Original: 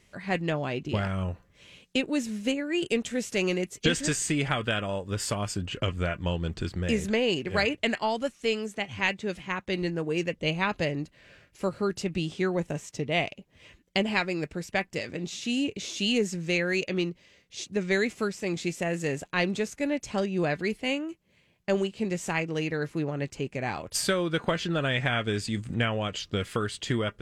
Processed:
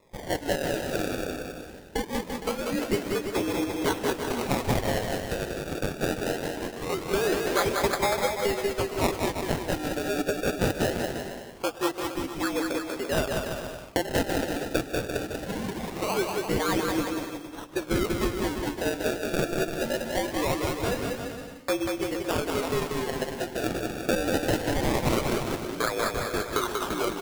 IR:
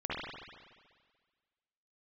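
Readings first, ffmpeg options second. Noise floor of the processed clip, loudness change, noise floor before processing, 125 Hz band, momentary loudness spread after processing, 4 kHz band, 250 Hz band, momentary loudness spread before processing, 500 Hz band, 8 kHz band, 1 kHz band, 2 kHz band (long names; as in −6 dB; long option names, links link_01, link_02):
−41 dBFS, +0.5 dB, −64 dBFS, −2.0 dB, 7 LU, −1.5 dB, 0.0 dB, 7 LU, +2.5 dB, +1.0 dB, +4.0 dB, −1.5 dB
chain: -filter_complex "[0:a]equalizer=frequency=1400:width_type=o:width=0.35:gain=6,asplit=2[link_01][link_02];[link_02]acompressor=threshold=-31dB:ratio=6,volume=3dB[link_03];[link_01][link_03]amix=inputs=2:normalize=0,highpass=frequency=370:width_type=q:width=0.5412,highpass=frequency=370:width_type=q:width=1.307,lowpass=frequency=3500:width_type=q:width=0.5176,lowpass=frequency=3500:width_type=q:width=0.7071,lowpass=frequency=3500:width_type=q:width=1.932,afreqshift=-52,asplit=2[link_04][link_05];[1:a]atrim=start_sample=2205,atrim=end_sample=6174,adelay=107[link_06];[link_05][link_06]afir=irnorm=-1:irlink=0,volume=-17.5dB[link_07];[link_04][link_07]amix=inputs=2:normalize=0,acrusher=samples=29:mix=1:aa=0.000001:lfo=1:lforange=29:lforate=0.22,aecho=1:1:190|342|463.6|560.9|638.7:0.631|0.398|0.251|0.158|0.1,volume=-3dB"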